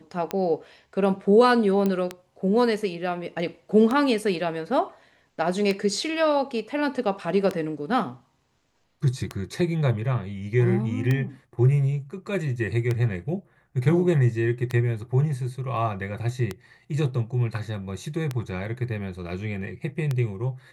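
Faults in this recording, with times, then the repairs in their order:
tick 33 1/3 rpm -13 dBFS
1.86 pop -13 dBFS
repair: de-click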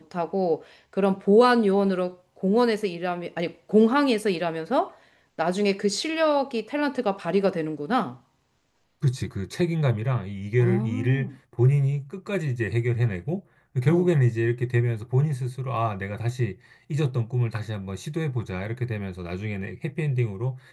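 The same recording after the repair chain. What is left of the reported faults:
none

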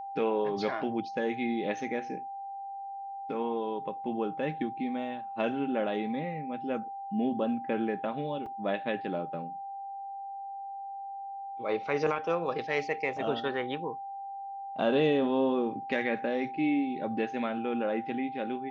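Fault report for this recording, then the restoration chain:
tone 790 Hz -37 dBFS
8.46 gap 4 ms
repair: notch 790 Hz, Q 30; interpolate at 8.46, 4 ms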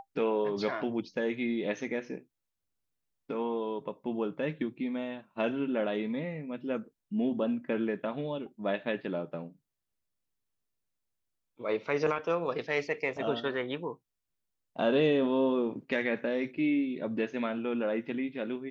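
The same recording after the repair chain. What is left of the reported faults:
none

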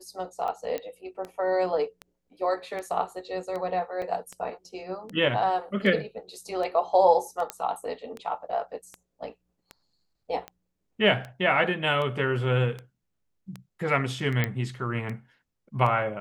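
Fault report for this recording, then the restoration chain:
tick 78 rpm -23 dBFS
0.78 pop -18 dBFS
4.02 gap 3.8 ms
7.5 pop -13 dBFS
14.44 pop -12 dBFS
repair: de-click; interpolate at 4.02, 3.8 ms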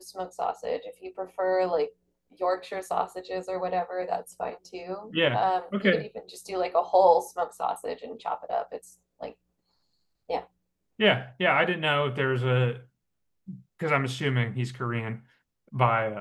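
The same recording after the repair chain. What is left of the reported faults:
none

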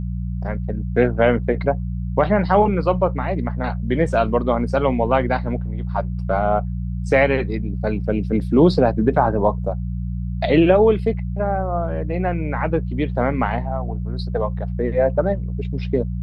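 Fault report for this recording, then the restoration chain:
hum 60 Hz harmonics 3 -25 dBFS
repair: de-hum 60 Hz, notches 3

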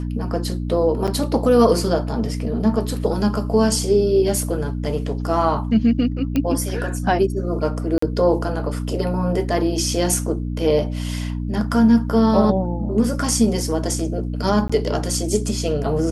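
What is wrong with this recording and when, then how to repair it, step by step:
hum 60 Hz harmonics 5 -25 dBFS
1.07–1.08 gap 6.9 ms
6.36 pop -9 dBFS
7.98–8.02 gap 44 ms
14.68–14.7 gap 15 ms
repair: de-click; de-hum 60 Hz, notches 5; interpolate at 1.07, 6.9 ms; interpolate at 7.98, 44 ms; interpolate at 14.68, 15 ms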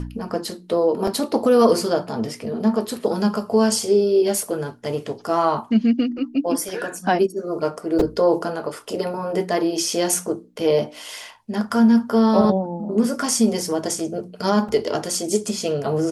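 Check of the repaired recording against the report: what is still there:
none

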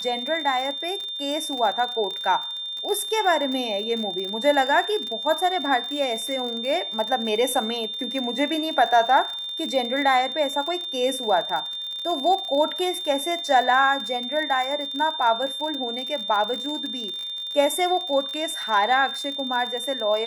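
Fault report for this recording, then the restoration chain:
crackle 44/s -28 dBFS
tone 3600 Hz -29 dBFS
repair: de-click; notch 3600 Hz, Q 30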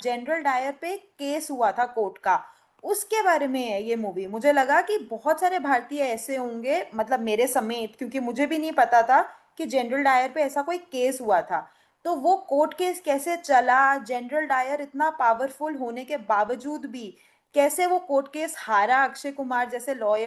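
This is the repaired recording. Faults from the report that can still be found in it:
none

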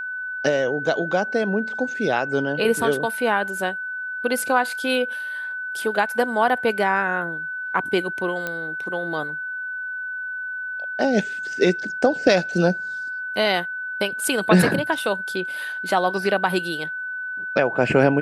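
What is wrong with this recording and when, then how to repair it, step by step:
tone 1500 Hz -27 dBFS
8.47 pop -13 dBFS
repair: de-click; notch 1500 Hz, Q 30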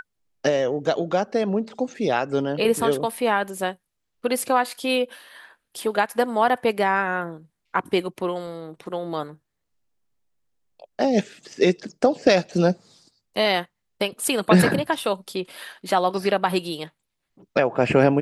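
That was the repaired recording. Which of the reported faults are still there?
none

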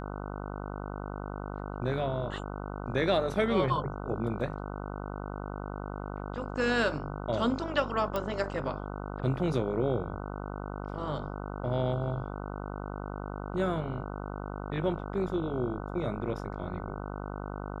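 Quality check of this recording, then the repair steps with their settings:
buzz 50 Hz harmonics 30 -38 dBFS
8.16 pop -18 dBFS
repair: de-click; de-hum 50 Hz, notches 30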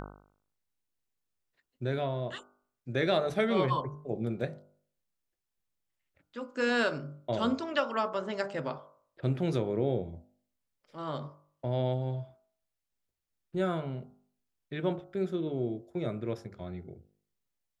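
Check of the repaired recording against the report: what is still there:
8.16 pop

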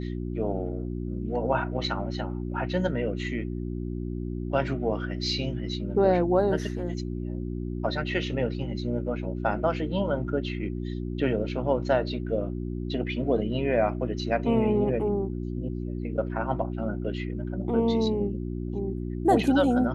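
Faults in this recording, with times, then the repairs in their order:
hum 60 Hz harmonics 6 -32 dBFS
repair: de-hum 60 Hz, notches 6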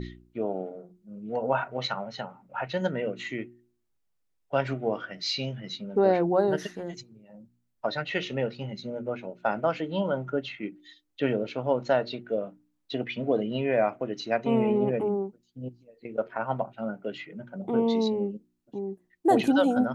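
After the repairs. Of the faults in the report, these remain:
none

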